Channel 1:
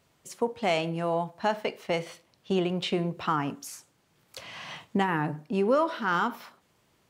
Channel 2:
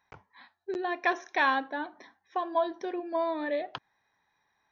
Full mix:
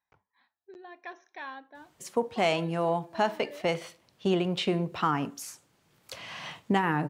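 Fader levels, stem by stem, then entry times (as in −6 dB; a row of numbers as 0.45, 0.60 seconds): +0.5, −15.5 decibels; 1.75, 0.00 seconds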